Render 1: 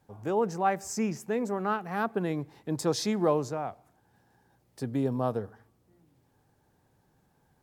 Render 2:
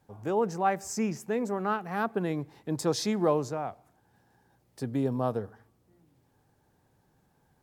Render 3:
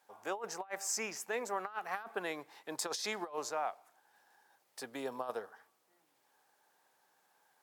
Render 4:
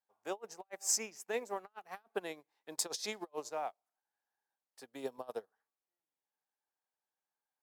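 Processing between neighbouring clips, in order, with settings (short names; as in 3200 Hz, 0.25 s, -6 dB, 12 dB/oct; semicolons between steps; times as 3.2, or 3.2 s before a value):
nothing audible
HPF 820 Hz 12 dB/oct; negative-ratio compressor -37 dBFS, ratio -0.5
dynamic EQ 1400 Hz, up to -8 dB, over -53 dBFS, Q 0.93; upward expander 2.5:1, over -55 dBFS; gain +6 dB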